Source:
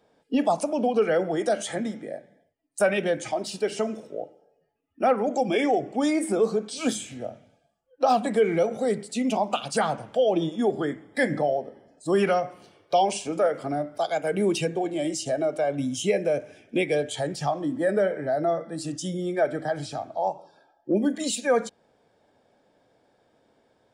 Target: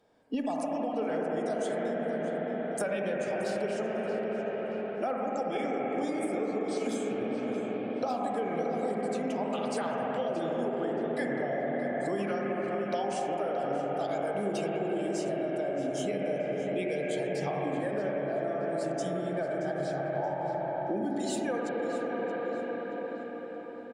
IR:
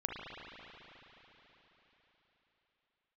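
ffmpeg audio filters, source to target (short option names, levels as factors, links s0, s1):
-filter_complex "[1:a]atrim=start_sample=2205,asetrate=32193,aresample=44100[s0];[0:a][s0]afir=irnorm=-1:irlink=0,acompressor=threshold=0.0562:ratio=6,asplit=2[s1][s2];[s2]adelay=626,lowpass=f=3700:p=1,volume=0.316,asplit=2[s3][s4];[s4]adelay=626,lowpass=f=3700:p=1,volume=0.5,asplit=2[s5][s6];[s6]adelay=626,lowpass=f=3700:p=1,volume=0.5,asplit=2[s7][s8];[s8]adelay=626,lowpass=f=3700:p=1,volume=0.5,asplit=2[s9][s10];[s10]adelay=626,lowpass=f=3700:p=1,volume=0.5[s11];[s1][s3][s5][s7][s9][s11]amix=inputs=6:normalize=0,volume=0.631"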